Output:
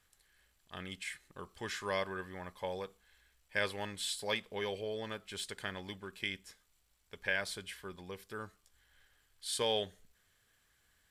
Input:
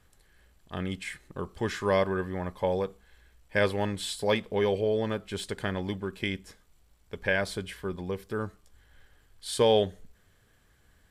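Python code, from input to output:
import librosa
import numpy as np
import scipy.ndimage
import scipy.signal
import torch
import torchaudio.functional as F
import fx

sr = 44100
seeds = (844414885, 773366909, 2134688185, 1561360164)

y = fx.tilt_shelf(x, sr, db=-6.5, hz=970.0)
y = y * librosa.db_to_amplitude(-8.5)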